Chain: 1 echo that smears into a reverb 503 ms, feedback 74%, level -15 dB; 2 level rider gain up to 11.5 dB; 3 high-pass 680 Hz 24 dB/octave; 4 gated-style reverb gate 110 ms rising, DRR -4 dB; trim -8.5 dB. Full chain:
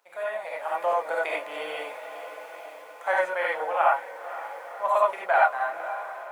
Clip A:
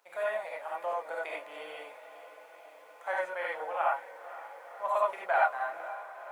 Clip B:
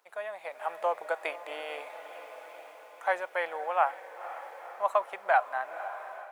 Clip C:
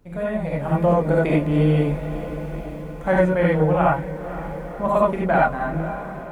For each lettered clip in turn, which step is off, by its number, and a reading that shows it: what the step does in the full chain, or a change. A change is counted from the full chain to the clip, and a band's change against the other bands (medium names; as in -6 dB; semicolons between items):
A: 2, momentary loudness spread change +5 LU; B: 4, momentary loudness spread change +2 LU; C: 3, 250 Hz band +30.5 dB